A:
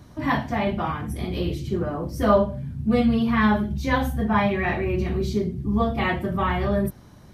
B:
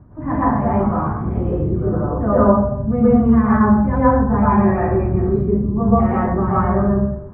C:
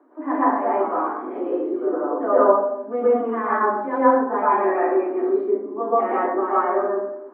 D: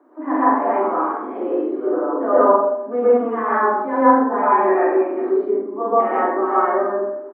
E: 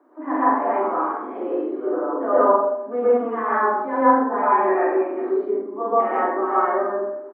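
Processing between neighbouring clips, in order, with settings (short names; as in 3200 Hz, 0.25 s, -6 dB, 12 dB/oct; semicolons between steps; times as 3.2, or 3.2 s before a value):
LPF 1400 Hz 24 dB/oct; low shelf 270 Hz +6.5 dB; plate-style reverb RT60 0.73 s, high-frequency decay 0.45×, pre-delay 0.105 s, DRR -8 dB; gain -3 dB
steep high-pass 270 Hz 72 dB/oct
doubler 45 ms -2.5 dB; gain +1 dB
low shelf 420 Hz -3.5 dB; gain -1.5 dB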